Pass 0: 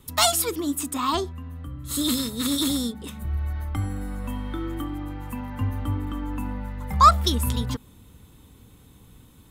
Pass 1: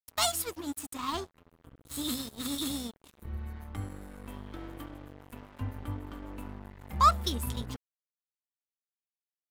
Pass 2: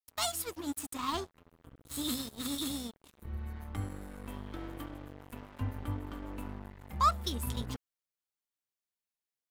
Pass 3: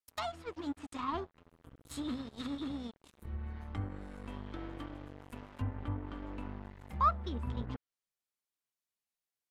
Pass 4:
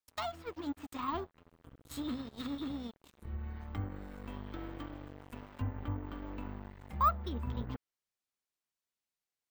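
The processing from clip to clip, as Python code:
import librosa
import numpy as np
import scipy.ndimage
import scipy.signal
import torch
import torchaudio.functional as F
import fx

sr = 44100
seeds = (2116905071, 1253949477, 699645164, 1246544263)

y1 = np.sign(x) * np.maximum(np.abs(x) - 10.0 ** (-32.5 / 20.0), 0.0)
y1 = F.gain(torch.from_numpy(y1), -7.0).numpy()
y2 = fx.rider(y1, sr, range_db=3, speed_s=0.5)
y2 = F.gain(torch.from_numpy(y2), -2.5).numpy()
y3 = fx.env_lowpass_down(y2, sr, base_hz=1900.0, full_db=-32.5)
y3 = F.gain(torch.from_numpy(y3), -1.0).numpy()
y4 = np.repeat(scipy.signal.resample_poly(y3, 1, 2), 2)[:len(y3)]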